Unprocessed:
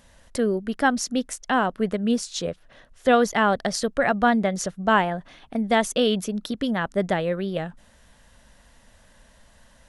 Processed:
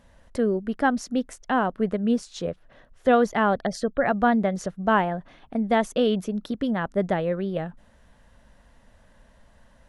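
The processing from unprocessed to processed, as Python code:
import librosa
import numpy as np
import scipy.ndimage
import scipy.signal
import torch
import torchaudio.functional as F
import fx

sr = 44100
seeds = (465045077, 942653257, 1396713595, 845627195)

y = fx.spec_gate(x, sr, threshold_db=-30, keep='strong', at=(3.61, 4.06))
y = fx.high_shelf(y, sr, hz=2500.0, db=-11.5)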